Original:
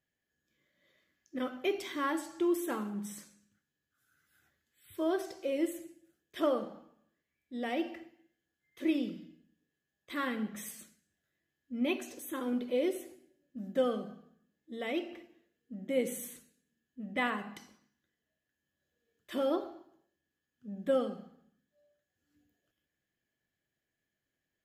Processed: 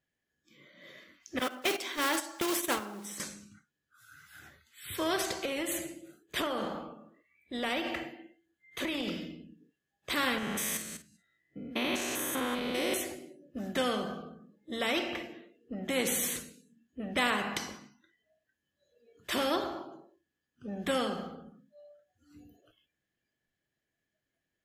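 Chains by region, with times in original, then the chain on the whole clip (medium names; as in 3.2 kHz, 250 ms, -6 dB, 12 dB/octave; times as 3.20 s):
1.39–3.20 s: block-companded coder 5-bit + high-pass 250 Hz + gate -37 dBFS, range -12 dB
5.23–9.08 s: band-stop 5.4 kHz, Q 6.6 + compression 4:1, threshold -35 dBFS
10.38–12.94 s: spectrogram pixelated in time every 200 ms + doubling 50 ms -11 dB
whole clip: spectral noise reduction 18 dB; treble shelf 9.9 kHz -8 dB; spectrum-flattening compressor 2:1; trim +4.5 dB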